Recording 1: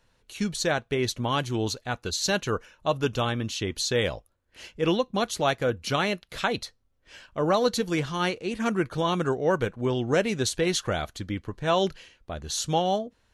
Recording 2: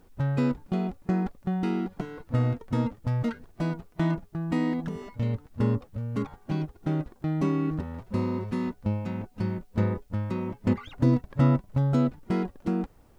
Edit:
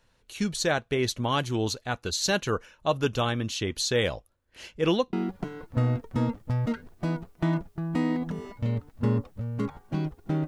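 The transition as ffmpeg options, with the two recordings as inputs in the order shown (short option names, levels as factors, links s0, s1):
-filter_complex "[0:a]apad=whole_dur=10.47,atrim=end=10.47,atrim=end=5.132[s0];[1:a]atrim=start=1.698:end=7.04[s1];[s0][s1]acrossfade=d=0.004:c1=hsin:c2=hsin"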